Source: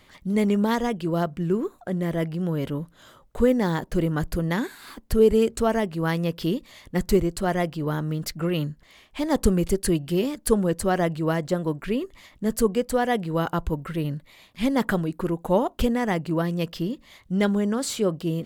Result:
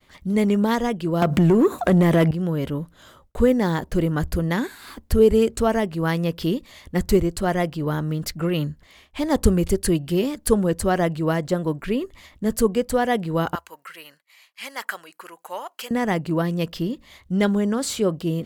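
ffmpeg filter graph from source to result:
ffmpeg -i in.wav -filter_complex "[0:a]asettb=1/sr,asplit=3[link_01][link_02][link_03];[link_01]atrim=end=1.224[link_04];[link_02]atrim=start=1.22:end=2.31,asetpts=PTS-STARTPTS,afade=type=in:duration=0.004:curve=qsin,afade=type=out:start_time=1.086:duration=0.004:curve=qsin,highpass=120,acompressor=threshold=-36dB:ratio=4:attack=3.2:release=140:knee=1:detection=peak,aeval=exprs='0.224*sin(PI/2*7.08*val(0)/0.224)':channel_layout=same[link_05];[link_03]atrim=start=2.306[link_06];[link_04][link_05]acrossfade=duration=0.004:curve1=hsin:curve2=qsin[link_07];[link_07][link_06]acrossfade=duration=0.004:curve1=qsin:curve2=hsin,asettb=1/sr,asplit=3[link_08][link_09][link_10];[link_08]atrim=end=13.554[link_11];[link_09]atrim=start=13.55:end=15.91,asetpts=PTS-STARTPTS,afade=type=in:duration=0.004:curve=qsin,afade=type=out:start_time=2.356:duration=0.004:curve=qsin,highpass=1300,bandreject=frequency=3600:width=6.5[link_12];[link_10]atrim=start=15.906[link_13];[link_11][link_12]acrossfade=duration=0.004:curve1=hsin:curve2=qsin[link_14];[link_14][link_13]acrossfade=duration=0.004:curve1=qsin:curve2=hsin,agate=range=-33dB:threshold=-51dB:ratio=3:detection=peak,equalizer=frequency=73:width_type=o:width=0.35:gain=10.5,volume=2dB" out.wav

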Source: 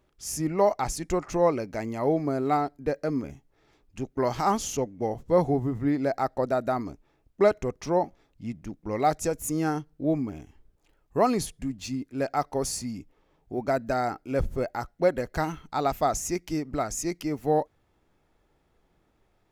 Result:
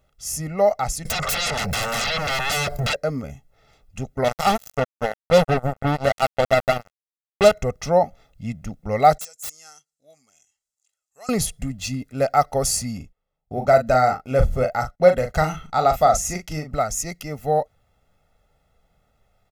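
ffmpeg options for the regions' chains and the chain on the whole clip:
ffmpeg -i in.wav -filter_complex "[0:a]asettb=1/sr,asplit=3[link_01][link_02][link_03];[link_01]atrim=end=1.054[link_04];[link_02]atrim=start=1.05:end=2.96,asetpts=PTS-STARTPTS,afade=type=in:duration=0.004:curve=qsin,afade=type=out:start_time=1.906:duration=0.004:curve=qsin,aecho=1:1:1.9:0.95,atrim=end_sample=84231,acompressor=threshold=-38dB:ratio=3:attack=3.2:release=140:knee=1:detection=peak,aeval=exprs='0.0562*sin(PI/2*10*val(0)/0.0562)':channel_layout=same[link_05];[link_03]atrim=start=2.956[link_06];[link_04][link_05]acrossfade=duration=0.004:curve1=hsin:curve2=qsin[link_07];[link_07][link_06]acrossfade=duration=0.004:curve1=qsin:curve2=hsin,asettb=1/sr,asplit=3[link_08][link_09][link_10];[link_08]atrim=end=4.244[link_11];[link_09]atrim=start=4.24:end=7.52,asetpts=PTS-STARTPTS,afade=type=in:duration=0.004:curve=qsin,afade=type=out:start_time=3.276:duration=0.004:curve=qsin,equalizer=frequency=2300:width_type=o:width=2.7:gain=-5.5,acrusher=bits=3:mix=0:aa=0.5[link_12];[link_10]atrim=start=7.516[link_13];[link_11][link_12]acrossfade=duration=0.004:curve1=hsin:curve2=qsin[link_14];[link_14][link_13]acrossfade=duration=0.004:curve1=qsin:curve2=hsin,asettb=1/sr,asplit=3[link_15][link_16][link_17];[link_15]atrim=end=9.184[link_18];[link_16]atrim=start=9.18:end=11.29,asetpts=PTS-STARTPTS,afade=type=in:duration=0.004:curve=qsin,afade=type=out:start_time=2.106:duration=0.004:curve=qsin,bandpass=frequency=7200:width_type=q:width=3,aeval=exprs='(mod(59.6*val(0)+1,2)-1)/59.6':channel_layout=same[link_19];[link_17]atrim=start=11.286[link_20];[link_18][link_19]acrossfade=duration=0.004:curve1=hsin:curve2=qsin[link_21];[link_21][link_20]acrossfade=duration=0.004:curve1=qsin:curve2=hsin,asettb=1/sr,asplit=3[link_22][link_23][link_24];[link_22]atrim=end=12.974[link_25];[link_23]atrim=start=12.97:end=16.7,asetpts=PTS-STARTPTS,afade=type=in:duration=0.004:curve=qsin,afade=type=out:start_time=3.726:duration=0.004:curve=qsin,agate=range=-24dB:threshold=-54dB:ratio=16:release=100:detection=peak,highshelf=frequency=11000:gain=-6.5,asplit=2[link_26][link_27];[link_27]adelay=39,volume=-7.5dB[link_28];[link_26][link_28]amix=inputs=2:normalize=0,atrim=end_sample=164493[link_29];[link_24]atrim=start=16.696[link_30];[link_25][link_29]acrossfade=duration=0.004:curve1=hsin:curve2=qsin[link_31];[link_31][link_30]acrossfade=duration=0.004:curve1=qsin:curve2=hsin,highshelf=frequency=6600:gain=4,aecho=1:1:1.5:0.78,dynaudnorm=framelen=220:gausssize=31:maxgain=6dB,volume=1dB" out.wav

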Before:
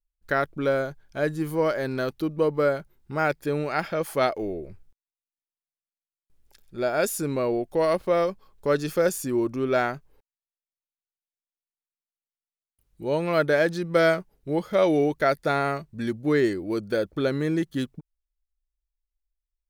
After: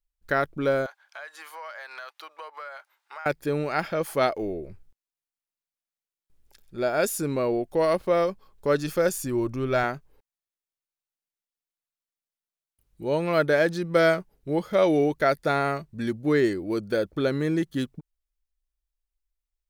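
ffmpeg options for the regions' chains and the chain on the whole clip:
ffmpeg -i in.wav -filter_complex "[0:a]asettb=1/sr,asplit=3[link_01][link_02][link_03];[link_01]atrim=end=0.864[link_04];[link_02]atrim=start=0.86:end=3.26,asetpts=PTS-STARTPTS,afade=type=in:duration=0.004:curve=qsin,afade=type=out:start_time=2.396:duration=0.004:curve=qsin,highpass=frequency=790:width=0.5412,highpass=frequency=790:width=1.3066,acompressor=threshold=-46dB:ratio=5:attack=3.2:release=140:knee=1:detection=peak,asplit=2[link_05][link_06];[link_06]highpass=frequency=720:poles=1,volume=16dB,asoftclip=type=tanh:threshold=-18.5dB[link_07];[link_05][link_07]amix=inputs=2:normalize=0,lowpass=frequency=2700:poles=1,volume=-6dB[link_08];[link_03]atrim=start=3.256[link_09];[link_04][link_08]acrossfade=duration=0.004:curve1=hsin:curve2=qsin[link_10];[link_10][link_09]acrossfade=duration=0.004:curve1=qsin:curve2=hsin,asettb=1/sr,asplit=3[link_11][link_12][link_13];[link_11]atrim=end=8.764[link_14];[link_12]atrim=start=8.76:end=9.84,asetpts=PTS-STARTPTS,afade=type=in:duration=0.004:curve=qsin,afade=type=out:start_time=1.076:duration=0.004:curve=qsin,bandreject=frequency=440:width=10,asubboost=boost=10.5:cutoff=120[link_15];[link_13]atrim=start=9.836[link_16];[link_14][link_15]acrossfade=duration=0.004:curve1=hsin:curve2=qsin[link_17];[link_17][link_16]acrossfade=duration=0.004:curve1=qsin:curve2=hsin" out.wav

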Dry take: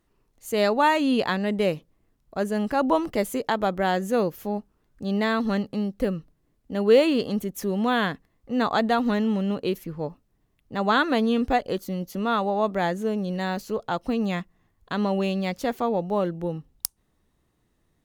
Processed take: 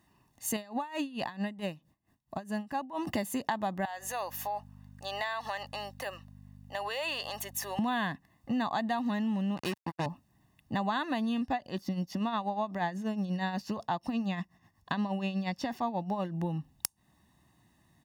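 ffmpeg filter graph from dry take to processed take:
ffmpeg -i in.wav -filter_complex "[0:a]asettb=1/sr,asplit=3[link_01][link_02][link_03];[link_01]atrim=end=0.564[link_04];[link_02]atrim=start=0.56:end=3.07,asetpts=PTS-STARTPTS,afade=type=in:duration=0.004:curve=qsin,afade=type=out:start_time=2.506:duration=0.004:curve=qsin,acompressor=threshold=-27dB:ratio=5:attack=3.2:release=140:knee=1:detection=peak,aeval=exprs='val(0)*pow(10,-22*(0.5-0.5*cos(2*PI*4.5*n/s))/20)':channel_layout=same[link_05];[link_03]atrim=start=3.066[link_06];[link_04][link_05]acrossfade=duration=0.004:curve1=hsin:curve2=qsin[link_07];[link_07][link_06]acrossfade=duration=0.004:curve1=qsin:curve2=hsin,asettb=1/sr,asplit=3[link_08][link_09][link_10];[link_08]atrim=end=3.854[link_11];[link_09]atrim=start=3.85:end=7.79,asetpts=PTS-STARTPTS,afade=type=in:duration=0.004:curve=qsin,afade=type=out:start_time=3.936:duration=0.004:curve=qsin,highpass=frequency=580:width=0.5412,highpass=frequency=580:width=1.3066,aeval=exprs='val(0)+0.00251*(sin(2*PI*50*n/s)+sin(2*PI*2*50*n/s)/2+sin(2*PI*3*50*n/s)/3+sin(2*PI*4*50*n/s)/4+sin(2*PI*5*50*n/s)/5)':channel_layout=same,acompressor=threshold=-35dB:ratio=3:attack=3.2:release=140:knee=1:detection=peak[link_12];[link_10]atrim=start=7.786[link_13];[link_11][link_12]acrossfade=duration=0.004:curve1=hsin:curve2=qsin[link_14];[link_14][link_13]acrossfade=duration=0.004:curve1=qsin:curve2=hsin,asettb=1/sr,asplit=3[link_15][link_16][link_17];[link_15]atrim=end=9.574[link_18];[link_16]atrim=start=9.57:end=10.06,asetpts=PTS-STARTPTS,afade=type=in:duration=0.004:curve=qsin,afade=type=out:start_time=0.486:duration=0.004:curve=qsin,highpass=60,lowshelf=frequency=230:gain=-5.5,acrusher=bits=4:mix=0:aa=0.5[link_19];[link_17]atrim=start=10.056[link_20];[link_18][link_19]acrossfade=duration=0.004:curve1=hsin:curve2=qsin[link_21];[link_21][link_20]acrossfade=duration=0.004:curve1=qsin:curve2=hsin,asettb=1/sr,asplit=3[link_22][link_23][link_24];[link_22]atrim=end=11.414[link_25];[link_23]atrim=start=11.41:end=16.34,asetpts=PTS-STARTPTS,afade=type=in:duration=0.004:curve=qsin,afade=type=out:start_time=4.926:duration=0.004:curve=qsin,acrossover=split=5000[link_26][link_27];[link_27]acompressor=threshold=-56dB:ratio=4:attack=1:release=60[link_28];[link_26][link_28]amix=inputs=2:normalize=0,equalizer=frequency=5300:width_type=o:width=0.24:gain=9,tremolo=f=8.3:d=0.64[link_29];[link_24]atrim=start=16.336[link_30];[link_25][link_29]acrossfade=duration=0.004:curve1=hsin:curve2=qsin[link_31];[link_31][link_30]acrossfade=duration=0.004:curve1=qsin:curve2=hsin,highpass=100,aecho=1:1:1.1:0.75,acompressor=threshold=-33dB:ratio=6,volume=3.5dB" out.wav

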